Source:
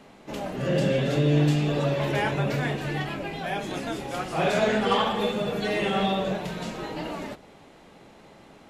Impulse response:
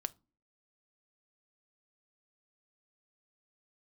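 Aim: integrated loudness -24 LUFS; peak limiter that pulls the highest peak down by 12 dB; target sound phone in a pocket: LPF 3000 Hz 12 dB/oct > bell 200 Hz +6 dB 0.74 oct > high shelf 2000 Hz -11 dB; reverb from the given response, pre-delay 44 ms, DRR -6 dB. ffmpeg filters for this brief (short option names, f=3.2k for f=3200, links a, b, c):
-filter_complex "[0:a]alimiter=limit=-21.5dB:level=0:latency=1,asplit=2[a][b];[1:a]atrim=start_sample=2205,adelay=44[c];[b][c]afir=irnorm=-1:irlink=0,volume=7dB[d];[a][d]amix=inputs=2:normalize=0,lowpass=3k,equalizer=f=200:t=o:w=0.74:g=6,highshelf=f=2k:g=-11,volume=-1dB"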